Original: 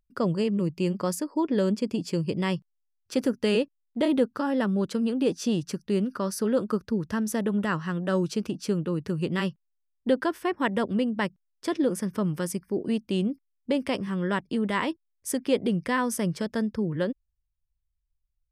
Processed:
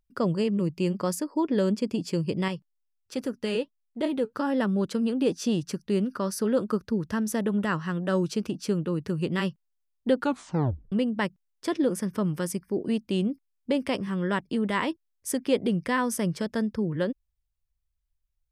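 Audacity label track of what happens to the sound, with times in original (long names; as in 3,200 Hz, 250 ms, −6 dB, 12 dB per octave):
2.480000	4.330000	flanger 1.4 Hz, delay 0.7 ms, depth 6.4 ms, regen +66%
10.170000	10.170000	tape stop 0.75 s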